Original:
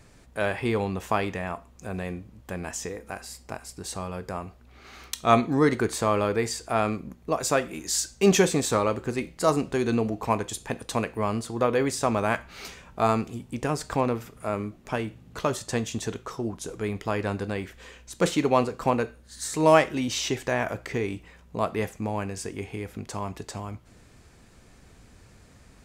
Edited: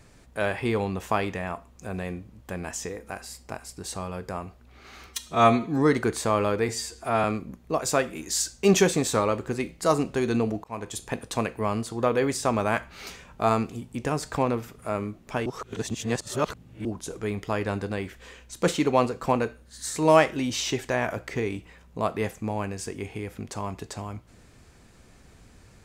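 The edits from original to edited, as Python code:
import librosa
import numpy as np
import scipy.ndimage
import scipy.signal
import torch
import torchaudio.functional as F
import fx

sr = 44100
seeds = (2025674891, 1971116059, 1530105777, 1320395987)

y = fx.edit(x, sr, fx.stretch_span(start_s=5.07, length_s=0.47, factor=1.5),
    fx.stretch_span(start_s=6.45, length_s=0.37, factor=1.5),
    fx.fade_in_span(start_s=10.22, length_s=0.35),
    fx.reverse_span(start_s=15.04, length_s=1.39), tone=tone)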